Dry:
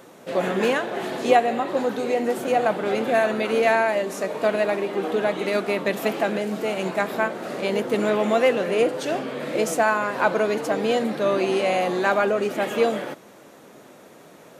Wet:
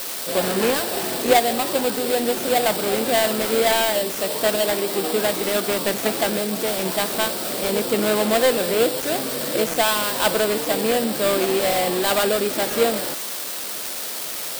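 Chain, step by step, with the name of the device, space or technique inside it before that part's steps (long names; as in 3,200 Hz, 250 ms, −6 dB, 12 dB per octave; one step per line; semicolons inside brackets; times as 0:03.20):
budget class-D amplifier (gap after every zero crossing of 0.23 ms; spike at every zero crossing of −12.5 dBFS)
level +1.5 dB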